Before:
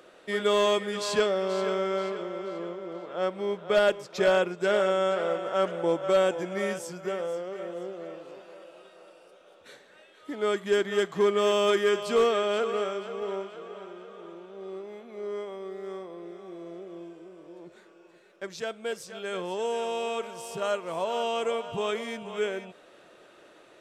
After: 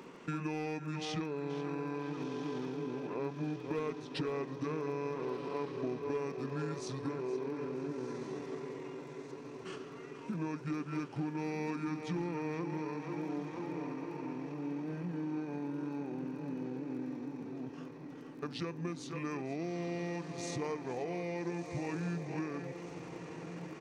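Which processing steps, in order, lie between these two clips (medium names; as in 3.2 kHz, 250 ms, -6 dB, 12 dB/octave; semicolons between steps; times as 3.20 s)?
peaking EQ 230 Hz +13.5 dB 0.34 oct; compression 6:1, threshold -38 dBFS, peak gain reduction 19.5 dB; crackle 15 per s -53 dBFS; echo that smears into a reverb 1400 ms, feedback 59%, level -9 dB; pitch shift -5 st; trim +2 dB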